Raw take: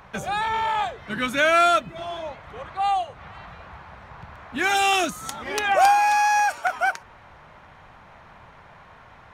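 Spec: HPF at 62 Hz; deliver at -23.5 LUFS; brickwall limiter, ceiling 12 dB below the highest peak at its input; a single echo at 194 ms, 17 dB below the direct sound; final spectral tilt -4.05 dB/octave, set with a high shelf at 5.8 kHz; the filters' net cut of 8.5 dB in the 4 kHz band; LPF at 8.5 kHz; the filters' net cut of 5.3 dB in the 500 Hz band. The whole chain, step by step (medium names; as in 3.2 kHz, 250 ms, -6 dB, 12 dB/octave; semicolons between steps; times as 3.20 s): high-pass 62 Hz; low-pass 8.5 kHz; peaking EQ 500 Hz -8 dB; peaking EQ 4 kHz -8.5 dB; treble shelf 5.8 kHz -8.5 dB; peak limiter -22 dBFS; delay 194 ms -17 dB; trim +7.5 dB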